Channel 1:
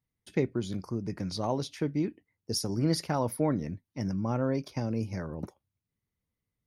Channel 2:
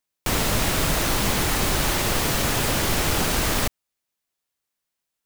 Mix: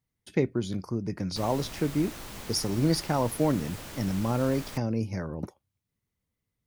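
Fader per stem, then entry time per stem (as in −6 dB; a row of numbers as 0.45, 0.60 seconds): +2.5, −19.5 decibels; 0.00, 1.10 seconds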